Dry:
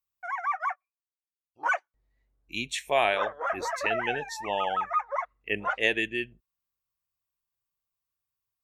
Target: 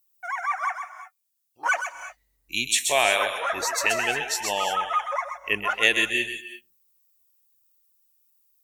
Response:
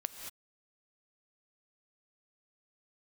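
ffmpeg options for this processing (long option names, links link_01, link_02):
-filter_complex "[0:a]crystalizer=i=4.5:c=0,asplit=2[link_01][link_02];[link_02]bass=frequency=250:gain=-12,treble=frequency=4000:gain=6[link_03];[1:a]atrim=start_sample=2205,adelay=129[link_04];[link_03][link_04]afir=irnorm=-1:irlink=0,volume=-7.5dB[link_05];[link_01][link_05]amix=inputs=2:normalize=0"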